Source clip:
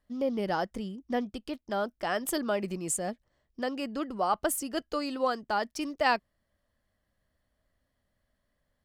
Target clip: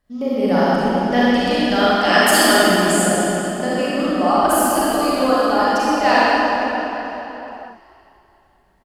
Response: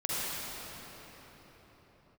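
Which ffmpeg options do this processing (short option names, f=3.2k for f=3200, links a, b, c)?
-filter_complex "[0:a]asettb=1/sr,asplit=3[a][b][c];[a]atrim=end=0.954[d];[b]atrim=start=0.95:end=2.54,asetpts=PTS-STARTPTS,afade=t=in:d=0.004:c=qsin,afade=t=out:st=1.586:d=0.004:c=qsin,equalizer=f=3.9k:w=0.32:g=11.5[e];[c]atrim=start=2.536[f];[d][e]acrossfade=d=0.004:c1=hsin:c2=qsin[g];[g][f]acrossfade=d=0.004:c1=qsin:c2=hsin,asplit=5[h][i][j][k][l];[i]adelay=429,afreqshift=30,volume=-23dB[m];[j]adelay=858,afreqshift=60,volume=-28.5dB[n];[k]adelay=1287,afreqshift=90,volume=-34dB[o];[l]adelay=1716,afreqshift=120,volume=-39.5dB[p];[h][m][n][o][p]amix=inputs=5:normalize=0[q];[1:a]atrim=start_sample=2205,asetrate=57330,aresample=44100[r];[q][r]afir=irnorm=-1:irlink=0,volume=7.5dB"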